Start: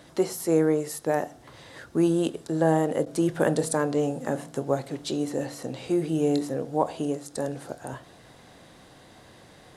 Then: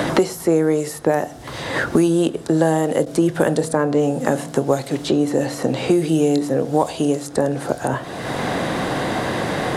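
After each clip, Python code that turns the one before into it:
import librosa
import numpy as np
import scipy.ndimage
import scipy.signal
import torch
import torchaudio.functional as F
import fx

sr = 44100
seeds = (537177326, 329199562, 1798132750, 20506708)

y = fx.band_squash(x, sr, depth_pct=100)
y = F.gain(torch.from_numpy(y), 7.0).numpy()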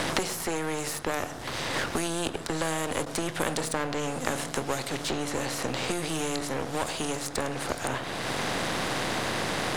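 y = np.where(x < 0.0, 10.0 ** (-7.0 / 20.0) * x, x)
y = fx.high_shelf(y, sr, hz=4600.0, db=-7.5)
y = fx.spectral_comp(y, sr, ratio=2.0)
y = F.gain(torch.from_numpy(y), -2.0).numpy()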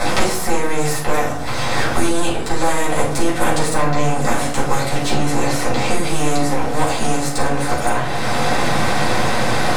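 y = fx.filter_lfo_notch(x, sr, shape='square', hz=9.2, low_hz=270.0, high_hz=3000.0, q=2.7)
y = fx.room_shoebox(y, sr, seeds[0], volume_m3=370.0, walls='furnished', distance_m=6.7)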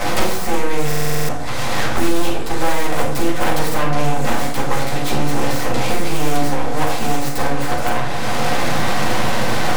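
y = fx.self_delay(x, sr, depth_ms=0.35)
y = fx.rev_schroeder(y, sr, rt60_s=0.34, comb_ms=32, drr_db=10.5)
y = fx.buffer_glitch(y, sr, at_s=(0.87,), block=2048, repeats=8)
y = F.gain(torch.from_numpy(y), -1.5).numpy()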